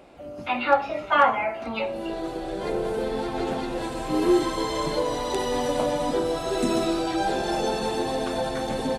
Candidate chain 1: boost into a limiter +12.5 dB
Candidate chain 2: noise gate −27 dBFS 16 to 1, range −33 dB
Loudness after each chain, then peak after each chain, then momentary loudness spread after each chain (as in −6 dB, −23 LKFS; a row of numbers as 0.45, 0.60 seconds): −14.0, −26.0 LKFS; −1.0, −5.0 dBFS; 6, 12 LU